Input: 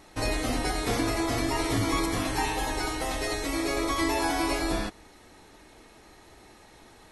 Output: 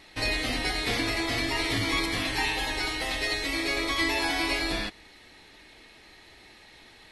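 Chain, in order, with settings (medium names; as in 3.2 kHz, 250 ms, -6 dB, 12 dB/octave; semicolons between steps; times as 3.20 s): high-order bell 2.9 kHz +10 dB; trim -3.5 dB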